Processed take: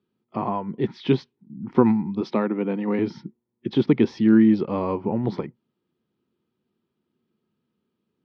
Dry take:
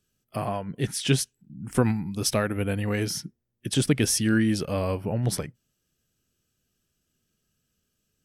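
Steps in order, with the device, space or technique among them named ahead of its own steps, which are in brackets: 2.21–2.99 Chebyshev high-pass 160 Hz, order 4; air absorption 270 m; kitchen radio (speaker cabinet 180–4300 Hz, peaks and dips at 220 Hz +6 dB, 360 Hz +7 dB, 620 Hz -6 dB, 940 Hz +9 dB, 1600 Hz -9 dB, 2800 Hz -8 dB); gain +3.5 dB

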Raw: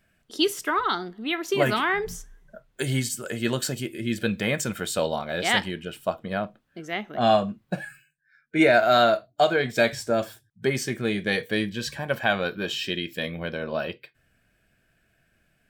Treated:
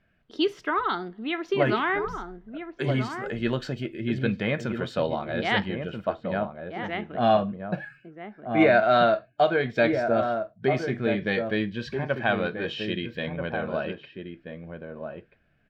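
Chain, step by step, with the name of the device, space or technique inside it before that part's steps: shout across a valley (air absorption 260 m; outdoor echo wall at 220 m, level -6 dB)

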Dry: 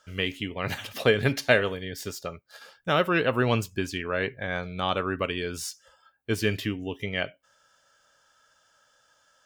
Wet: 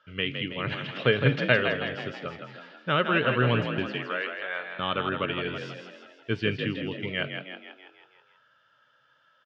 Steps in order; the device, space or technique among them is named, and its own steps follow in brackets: 3.9–4.79 Chebyshev high-pass 640 Hz, order 2; frequency-shifting delay pedal into a guitar cabinet (frequency-shifting echo 0.162 s, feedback 56%, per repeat +46 Hz, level -6.5 dB; speaker cabinet 110–3600 Hz, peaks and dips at 130 Hz +9 dB, 750 Hz -7 dB, 1400 Hz +4 dB, 2900 Hz +4 dB); gain -2 dB

